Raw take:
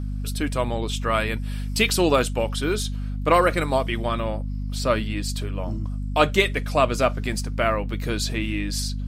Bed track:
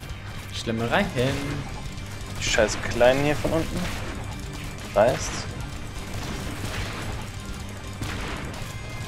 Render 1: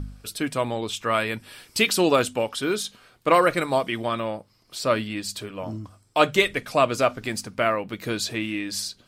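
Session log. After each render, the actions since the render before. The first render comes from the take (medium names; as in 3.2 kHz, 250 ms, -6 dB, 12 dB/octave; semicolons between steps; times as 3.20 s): de-hum 50 Hz, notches 5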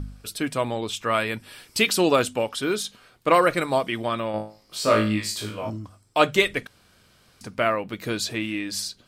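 4.32–5.70 s: flutter echo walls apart 3.2 m, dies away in 0.38 s; 6.67–7.41 s: room tone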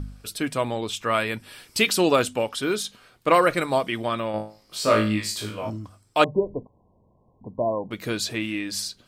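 6.24–7.91 s: brick-wall FIR low-pass 1.1 kHz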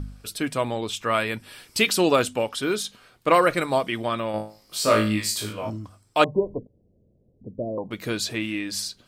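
4.28–5.53 s: treble shelf 7.1 kHz +8 dB; 6.58–7.78 s: steep low-pass 550 Hz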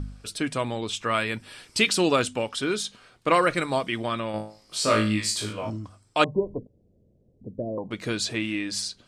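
low-pass 9.7 kHz 24 dB/octave; dynamic bell 640 Hz, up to -4 dB, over -30 dBFS, Q 0.83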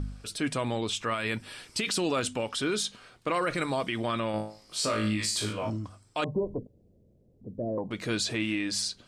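transient shaper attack -4 dB, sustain +1 dB; peak limiter -19.5 dBFS, peak gain reduction 11 dB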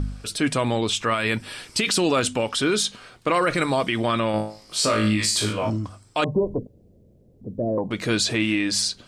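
trim +7.5 dB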